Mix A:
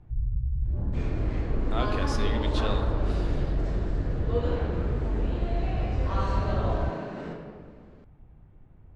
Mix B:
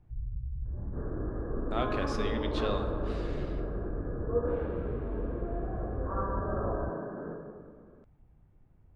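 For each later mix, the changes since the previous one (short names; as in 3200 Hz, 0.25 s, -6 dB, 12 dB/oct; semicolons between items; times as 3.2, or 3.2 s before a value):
speech: add high shelf 4300 Hz -10 dB; first sound -8.5 dB; second sound: add rippled Chebyshev low-pass 1700 Hz, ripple 6 dB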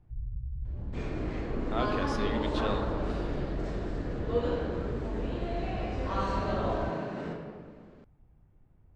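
second sound: remove rippled Chebyshev low-pass 1700 Hz, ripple 6 dB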